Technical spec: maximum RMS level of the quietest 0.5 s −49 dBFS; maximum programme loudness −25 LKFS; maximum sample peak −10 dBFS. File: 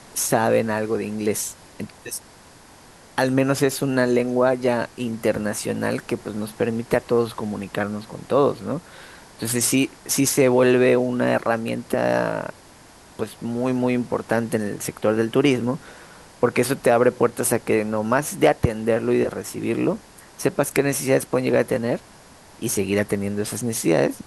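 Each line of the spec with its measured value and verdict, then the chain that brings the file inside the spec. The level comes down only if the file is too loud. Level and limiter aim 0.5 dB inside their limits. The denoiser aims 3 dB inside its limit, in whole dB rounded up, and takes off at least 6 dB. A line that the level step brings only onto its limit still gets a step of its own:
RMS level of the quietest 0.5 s −48 dBFS: out of spec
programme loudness −22.0 LKFS: out of spec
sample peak −3.0 dBFS: out of spec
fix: level −3.5 dB
brickwall limiter −10.5 dBFS

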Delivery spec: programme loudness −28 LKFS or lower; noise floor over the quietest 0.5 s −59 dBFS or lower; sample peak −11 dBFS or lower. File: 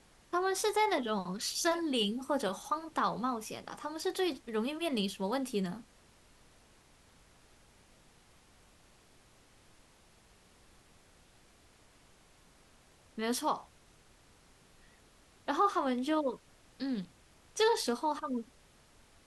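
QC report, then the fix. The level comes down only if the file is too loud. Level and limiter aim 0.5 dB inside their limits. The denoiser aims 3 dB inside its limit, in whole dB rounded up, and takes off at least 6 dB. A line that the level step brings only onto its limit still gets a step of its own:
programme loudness −33.5 LKFS: in spec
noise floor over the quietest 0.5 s −63 dBFS: in spec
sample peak −18.5 dBFS: in spec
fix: no processing needed

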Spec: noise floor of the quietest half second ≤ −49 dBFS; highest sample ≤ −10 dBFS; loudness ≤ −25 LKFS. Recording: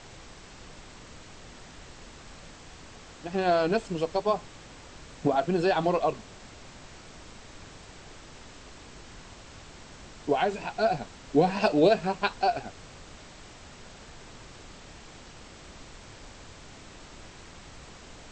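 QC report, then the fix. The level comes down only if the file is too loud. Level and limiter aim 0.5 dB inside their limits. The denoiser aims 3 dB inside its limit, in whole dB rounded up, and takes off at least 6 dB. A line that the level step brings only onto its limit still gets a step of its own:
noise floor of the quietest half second −48 dBFS: out of spec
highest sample −9.0 dBFS: out of spec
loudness −27.0 LKFS: in spec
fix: broadband denoise 6 dB, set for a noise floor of −48 dBFS
brickwall limiter −10.5 dBFS

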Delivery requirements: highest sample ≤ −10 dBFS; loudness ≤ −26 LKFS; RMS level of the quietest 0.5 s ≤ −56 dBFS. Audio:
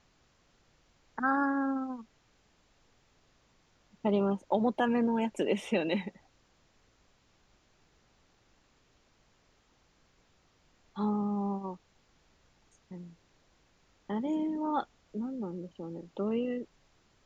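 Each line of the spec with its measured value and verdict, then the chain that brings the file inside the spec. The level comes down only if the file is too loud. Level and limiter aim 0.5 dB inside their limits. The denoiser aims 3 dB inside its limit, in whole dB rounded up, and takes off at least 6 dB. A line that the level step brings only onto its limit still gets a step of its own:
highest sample −15.5 dBFS: in spec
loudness −32.5 LKFS: in spec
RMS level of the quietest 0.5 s −68 dBFS: in spec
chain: no processing needed

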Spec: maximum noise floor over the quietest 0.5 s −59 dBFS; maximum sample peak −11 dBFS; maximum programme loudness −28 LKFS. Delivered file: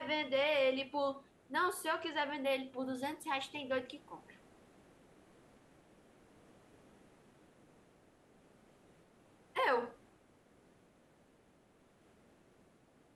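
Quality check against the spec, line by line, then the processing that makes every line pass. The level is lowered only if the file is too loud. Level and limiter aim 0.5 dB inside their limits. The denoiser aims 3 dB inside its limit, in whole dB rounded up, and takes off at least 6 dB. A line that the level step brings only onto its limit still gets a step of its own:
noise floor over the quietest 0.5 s −68 dBFS: in spec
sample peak −21.5 dBFS: in spec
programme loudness −36.5 LKFS: in spec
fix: no processing needed

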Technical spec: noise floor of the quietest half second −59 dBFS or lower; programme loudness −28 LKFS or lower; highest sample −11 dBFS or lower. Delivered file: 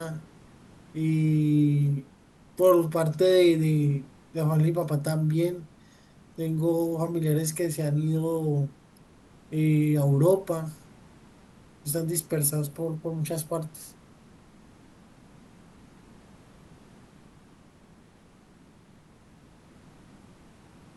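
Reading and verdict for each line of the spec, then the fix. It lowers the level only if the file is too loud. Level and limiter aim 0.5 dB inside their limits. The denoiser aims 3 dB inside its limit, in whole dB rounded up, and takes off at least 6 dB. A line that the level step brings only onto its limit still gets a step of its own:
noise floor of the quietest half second −56 dBFS: out of spec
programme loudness −25.5 LKFS: out of spec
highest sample −9.0 dBFS: out of spec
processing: broadband denoise 6 dB, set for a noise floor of −56 dBFS
level −3 dB

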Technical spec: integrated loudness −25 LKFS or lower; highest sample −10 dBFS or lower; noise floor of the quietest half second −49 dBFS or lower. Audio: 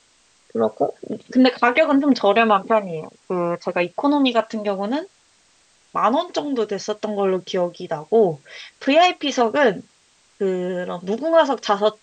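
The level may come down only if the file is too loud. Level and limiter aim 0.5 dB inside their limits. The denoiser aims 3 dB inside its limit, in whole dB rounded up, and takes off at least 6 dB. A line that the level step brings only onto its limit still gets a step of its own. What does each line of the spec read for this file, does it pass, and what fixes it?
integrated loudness −20.0 LKFS: out of spec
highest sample −3.0 dBFS: out of spec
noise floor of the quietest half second −58 dBFS: in spec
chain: level −5.5 dB
brickwall limiter −10.5 dBFS

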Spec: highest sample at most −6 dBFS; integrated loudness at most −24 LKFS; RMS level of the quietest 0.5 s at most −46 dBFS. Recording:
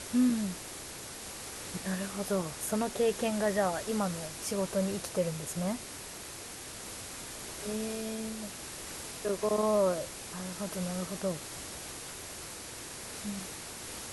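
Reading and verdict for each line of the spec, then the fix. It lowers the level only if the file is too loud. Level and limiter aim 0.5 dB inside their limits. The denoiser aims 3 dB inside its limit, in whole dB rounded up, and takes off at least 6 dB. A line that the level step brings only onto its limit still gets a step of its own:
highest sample −17.5 dBFS: in spec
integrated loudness −34.5 LKFS: in spec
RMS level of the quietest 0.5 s −44 dBFS: out of spec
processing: broadband denoise 6 dB, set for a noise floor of −44 dBFS

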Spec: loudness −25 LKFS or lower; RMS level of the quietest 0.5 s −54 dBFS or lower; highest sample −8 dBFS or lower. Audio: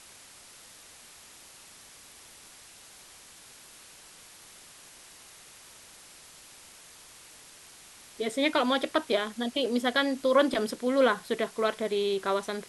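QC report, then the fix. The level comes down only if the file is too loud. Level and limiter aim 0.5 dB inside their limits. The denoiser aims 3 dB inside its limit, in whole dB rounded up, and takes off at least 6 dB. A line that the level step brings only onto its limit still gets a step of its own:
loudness −27.5 LKFS: in spec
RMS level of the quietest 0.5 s −52 dBFS: out of spec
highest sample −10.5 dBFS: in spec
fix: broadband denoise 6 dB, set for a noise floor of −52 dBFS

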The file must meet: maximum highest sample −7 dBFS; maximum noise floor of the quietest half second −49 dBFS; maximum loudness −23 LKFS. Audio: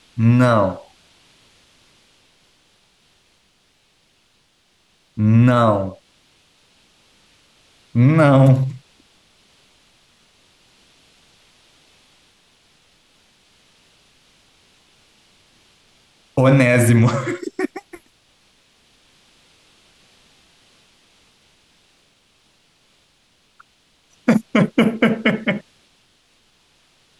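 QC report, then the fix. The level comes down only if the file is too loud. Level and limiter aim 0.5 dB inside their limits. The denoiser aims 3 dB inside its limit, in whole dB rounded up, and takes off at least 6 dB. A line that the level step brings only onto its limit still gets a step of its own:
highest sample −4.0 dBFS: out of spec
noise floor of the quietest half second −61 dBFS: in spec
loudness −16.5 LKFS: out of spec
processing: level −7 dB

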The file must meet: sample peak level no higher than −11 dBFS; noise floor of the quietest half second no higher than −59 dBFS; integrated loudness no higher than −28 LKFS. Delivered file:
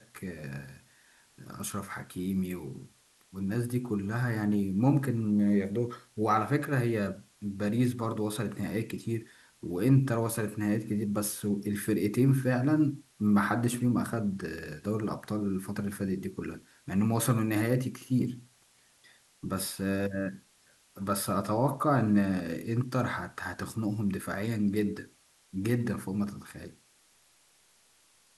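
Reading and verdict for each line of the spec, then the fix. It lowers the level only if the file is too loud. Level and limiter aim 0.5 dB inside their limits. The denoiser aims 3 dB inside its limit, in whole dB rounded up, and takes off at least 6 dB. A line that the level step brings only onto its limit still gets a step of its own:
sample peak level −12.0 dBFS: in spec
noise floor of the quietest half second −65 dBFS: in spec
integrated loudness −30.5 LKFS: in spec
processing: no processing needed

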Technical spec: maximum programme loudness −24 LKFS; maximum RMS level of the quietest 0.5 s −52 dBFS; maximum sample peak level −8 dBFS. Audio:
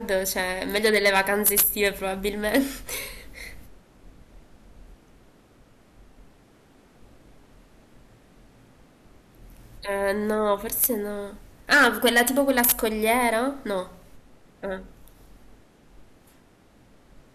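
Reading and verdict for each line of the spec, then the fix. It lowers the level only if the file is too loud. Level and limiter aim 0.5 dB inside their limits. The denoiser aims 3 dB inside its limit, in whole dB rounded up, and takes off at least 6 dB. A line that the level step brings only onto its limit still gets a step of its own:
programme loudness −22.5 LKFS: out of spec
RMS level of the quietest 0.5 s −56 dBFS: in spec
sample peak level −8.5 dBFS: in spec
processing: level −2 dB

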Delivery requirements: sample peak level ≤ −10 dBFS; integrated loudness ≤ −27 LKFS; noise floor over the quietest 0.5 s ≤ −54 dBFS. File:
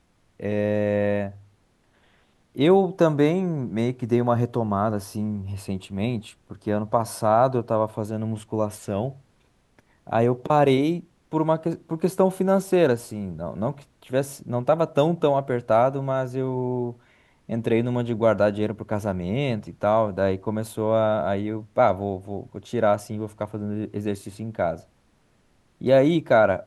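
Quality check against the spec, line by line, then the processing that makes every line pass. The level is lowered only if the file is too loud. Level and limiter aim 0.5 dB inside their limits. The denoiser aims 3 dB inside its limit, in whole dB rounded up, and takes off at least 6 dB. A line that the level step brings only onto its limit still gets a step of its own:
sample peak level −5.5 dBFS: out of spec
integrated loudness −24.0 LKFS: out of spec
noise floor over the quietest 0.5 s −63 dBFS: in spec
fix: level −3.5 dB
brickwall limiter −10.5 dBFS

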